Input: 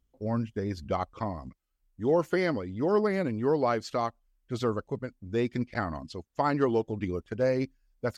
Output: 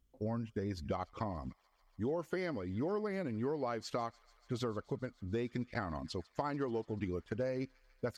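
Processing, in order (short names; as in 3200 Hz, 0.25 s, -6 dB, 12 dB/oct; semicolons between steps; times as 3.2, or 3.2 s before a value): compressor, threshold -34 dBFS, peak gain reduction 13.5 dB; on a send: thin delay 0.145 s, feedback 83%, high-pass 1800 Hz, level -21.5 dB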